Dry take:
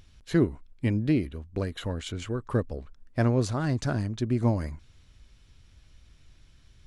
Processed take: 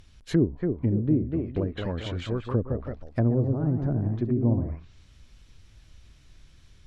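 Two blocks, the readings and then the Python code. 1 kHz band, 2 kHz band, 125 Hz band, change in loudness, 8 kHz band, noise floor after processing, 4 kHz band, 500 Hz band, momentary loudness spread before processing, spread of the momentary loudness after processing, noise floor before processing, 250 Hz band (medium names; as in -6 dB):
-4.0 dB, -6.0 dB, +2.5 dB, +1.5 dB, under -10 dB, -55 dBFS, -2.5 dB, +1.0 dB, 10 LU, 8 LU, -58 dBFS, +2.0 dB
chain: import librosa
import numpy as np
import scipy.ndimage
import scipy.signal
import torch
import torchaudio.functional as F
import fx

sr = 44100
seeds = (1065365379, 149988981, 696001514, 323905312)

y = fx.echo_pitch(x, sr, ms=304, semitones=1, count=2, db_per_echo=-6.0)
y = fx.env_lowpass_down(y, sr, base_hz=450.0, full_db=-22.0)
y = F.gain(torch.from_numpy(y), 1.5).numpy()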